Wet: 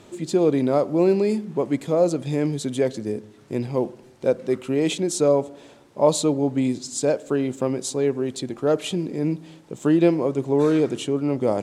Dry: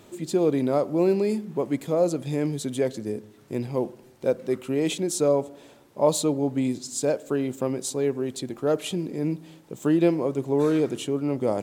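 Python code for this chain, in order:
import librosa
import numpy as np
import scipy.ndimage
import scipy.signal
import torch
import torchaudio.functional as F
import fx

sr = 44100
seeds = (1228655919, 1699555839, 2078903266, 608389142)

y = scipy.signal.sosfilt(scipy.signal.butter(2, 9100.0, 'lowpass', fs=sr, output='sos'), x)
y = y * librosa.db_to_amplitude(3.0)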